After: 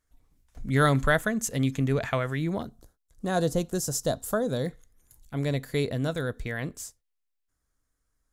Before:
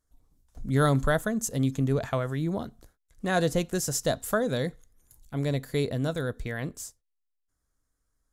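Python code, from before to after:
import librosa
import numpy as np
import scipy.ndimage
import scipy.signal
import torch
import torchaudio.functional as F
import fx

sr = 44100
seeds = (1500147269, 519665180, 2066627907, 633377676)

y = fx.peak_eq(x, sr, hz=2200.0, db=fx.steps((0.0, 9.0), (2.62, -9.0), (4.66, 3.0)), octaves=1.1)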